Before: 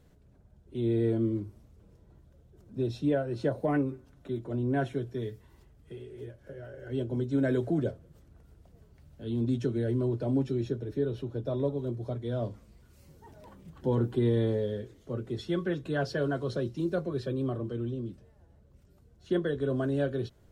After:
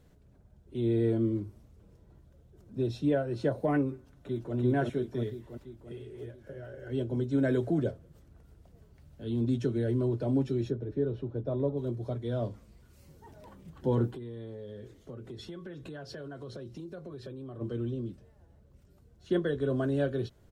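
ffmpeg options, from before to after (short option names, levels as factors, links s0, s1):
-filter_complex "[0:a]asplit=2[s0][s1];[s1]afade=t=in:st=3.93:d=0.01,afade=t=out:st=4.55:d=0.01,aecho=0:1:340|680|1020|1360|1700|2040|2380|2720|3060|3400:1|0.6|0.36|0.216|0.1296|0.07776|0.046656|0.0279936|0.0167962|0.0100777[s2];[s0][s2]amix=inputs=2:normalize=0,asplit=3[s3][s4][s5];[s3]afade=t=out:st=10.7:d=0.02[s6];[s4]lowpass=f=1300:p=1,afade=t=in:st=10.7:d=0.02,afade=t=out:st=11.76:d=0.02[s7];[s5]afade=t=in:st=11.76:d=0.02[s8];[s6][s7][s8]amix=inputs=3:normalize=0,asplit=3[s9][s10][s11];[s9]afade=t=out:st=14.1:d=0.02[s12];[s10]acompressor=threshold=0.0112:ratio=8:attack=3.2:release=140:knee=1:detection=peak,afade=t=in:st=14.1:d=0.02,afade=t=out:st=17.6:d=0.02[s13];[s11]afade=t=in:st=17.6:d=0.02[s14];[s12][s13][s14]amix=inputs=3:normalize=0"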